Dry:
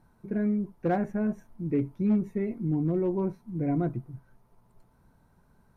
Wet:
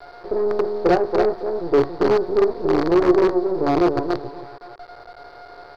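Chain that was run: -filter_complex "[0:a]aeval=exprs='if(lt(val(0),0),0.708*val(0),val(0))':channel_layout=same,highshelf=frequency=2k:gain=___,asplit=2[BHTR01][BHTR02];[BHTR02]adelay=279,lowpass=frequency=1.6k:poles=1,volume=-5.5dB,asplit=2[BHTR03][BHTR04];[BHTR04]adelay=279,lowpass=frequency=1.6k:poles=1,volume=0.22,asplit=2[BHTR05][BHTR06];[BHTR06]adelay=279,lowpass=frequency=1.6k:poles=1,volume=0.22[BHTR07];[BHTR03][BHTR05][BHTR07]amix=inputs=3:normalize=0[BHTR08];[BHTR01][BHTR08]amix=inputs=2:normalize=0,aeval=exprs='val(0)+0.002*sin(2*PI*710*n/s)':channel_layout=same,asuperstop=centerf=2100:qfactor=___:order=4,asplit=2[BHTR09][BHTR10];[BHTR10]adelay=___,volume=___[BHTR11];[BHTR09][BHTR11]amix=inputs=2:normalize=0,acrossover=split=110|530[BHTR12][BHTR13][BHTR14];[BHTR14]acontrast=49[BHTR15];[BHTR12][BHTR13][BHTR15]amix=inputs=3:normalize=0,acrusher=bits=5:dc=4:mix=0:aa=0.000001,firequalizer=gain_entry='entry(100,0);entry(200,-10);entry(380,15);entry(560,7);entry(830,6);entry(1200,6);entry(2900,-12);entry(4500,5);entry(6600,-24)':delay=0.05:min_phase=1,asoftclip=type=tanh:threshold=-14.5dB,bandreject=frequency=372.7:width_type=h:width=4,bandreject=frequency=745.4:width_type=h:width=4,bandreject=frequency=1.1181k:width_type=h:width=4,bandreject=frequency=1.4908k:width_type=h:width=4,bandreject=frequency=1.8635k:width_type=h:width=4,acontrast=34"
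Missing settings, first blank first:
-6.5, 1, 17, -11dB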